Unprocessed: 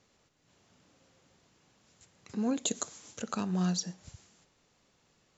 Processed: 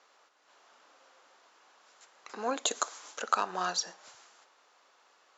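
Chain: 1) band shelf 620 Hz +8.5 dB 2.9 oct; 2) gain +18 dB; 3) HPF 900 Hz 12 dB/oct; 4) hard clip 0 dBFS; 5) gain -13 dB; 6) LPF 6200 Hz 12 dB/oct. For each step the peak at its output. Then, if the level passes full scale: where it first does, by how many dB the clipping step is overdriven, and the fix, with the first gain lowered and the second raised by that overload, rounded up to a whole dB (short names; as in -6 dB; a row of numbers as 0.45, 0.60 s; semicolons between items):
-12.0, +6.0, +4.0, 0.0, -13.0, -12.5 dBFS; step 2, 4.0 dB; step 2 +14 dB, step 5 -9 dB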